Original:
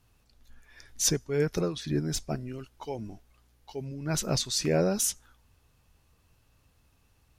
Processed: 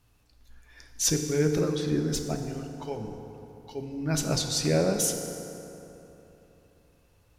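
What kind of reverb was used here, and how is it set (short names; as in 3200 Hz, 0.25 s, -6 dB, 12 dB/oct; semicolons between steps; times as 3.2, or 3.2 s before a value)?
FDN reverb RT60 3.3 s, high-frequency decay 0.55×, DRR 4 dB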